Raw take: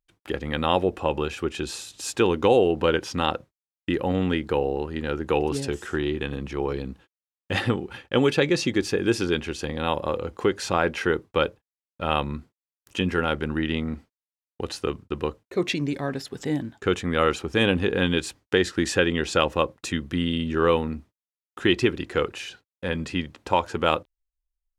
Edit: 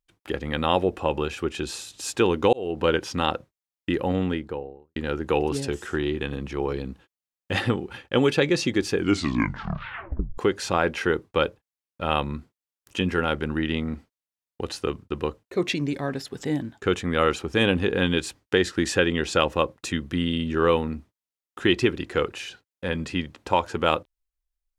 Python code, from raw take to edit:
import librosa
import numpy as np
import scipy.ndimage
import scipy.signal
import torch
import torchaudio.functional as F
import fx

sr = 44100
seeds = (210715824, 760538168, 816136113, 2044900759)

y = fx.studio_fade_out(x, sr, start_s=4.04, length_s=0.92)
y = fx.edit(y, sr, fx.fade_in_span(start_s=2.53, length_s=0.34),
    fx.tape_stop(start_s=8.93, length_s=1.45), tone=tone)